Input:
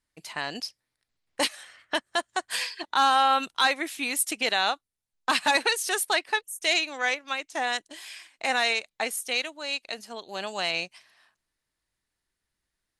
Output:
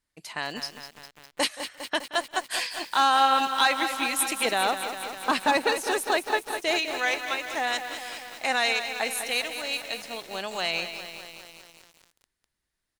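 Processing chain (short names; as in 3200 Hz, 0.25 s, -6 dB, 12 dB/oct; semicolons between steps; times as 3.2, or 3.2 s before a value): 4.45–6.79 tilt shelf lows +6 dB, about 1100 Hz; feedback echo 0.175 s, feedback 20%, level -18.5 dB; lo-fi delay 0.202 s, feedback 80%, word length 7-bit, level -9 dB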